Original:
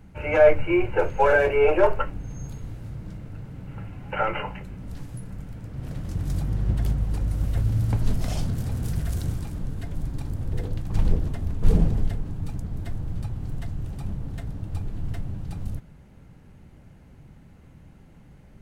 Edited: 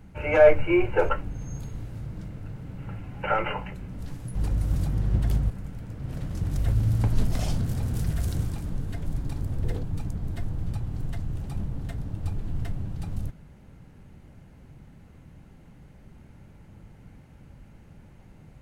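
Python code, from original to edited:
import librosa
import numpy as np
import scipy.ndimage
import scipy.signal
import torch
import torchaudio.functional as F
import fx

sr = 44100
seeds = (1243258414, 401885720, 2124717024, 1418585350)

y = fx.edit(x, sr, fx.cut(start_s=1.09, length_s=0.89),
    fx.swap(start_s=5.24, length_s=1.07, other_s=7.05, other_length_s=0.41),
    fx.cut(start_s=10.72, length_s=1.6), tone=tone)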